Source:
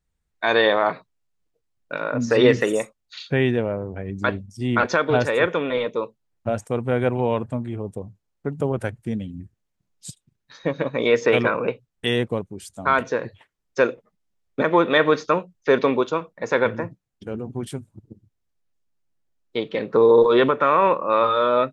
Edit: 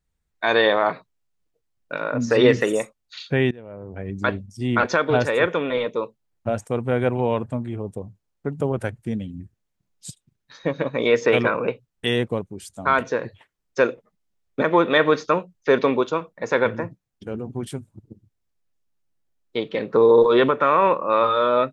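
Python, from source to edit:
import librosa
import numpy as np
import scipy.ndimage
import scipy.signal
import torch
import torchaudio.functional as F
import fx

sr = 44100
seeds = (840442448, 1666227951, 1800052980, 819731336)

y = fx.edit(x, sr, fx.fade_in_from(start_s=3.51, length_s=0.52, curve='qua', floor_db=-20.5), tone=tone)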